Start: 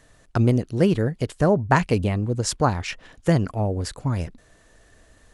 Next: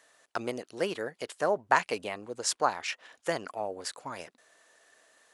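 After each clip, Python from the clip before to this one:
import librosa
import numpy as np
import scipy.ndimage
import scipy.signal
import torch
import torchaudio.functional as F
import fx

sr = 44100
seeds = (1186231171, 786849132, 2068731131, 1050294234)

y = scipy.signal.sosfilt(scipy.signal.butter(2, 600.0, 'highpass', fs=sr, output='sos'), x)
y = y * librosa.db_to_amplitude(-3.0)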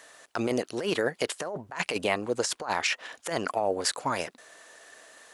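y = fx.over_compress(x, sr, threshold_db=-35.0, ratio=-1.0)
y = y * librosa.db_to_amplitude(6.5)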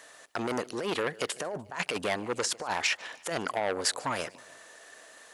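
y = fx.echo_feedback(x, sr, ms=148, feedback_pct=52, wet_db=-24)
y = fx.transformer_sat(y, sr, knee_hz=2200.0)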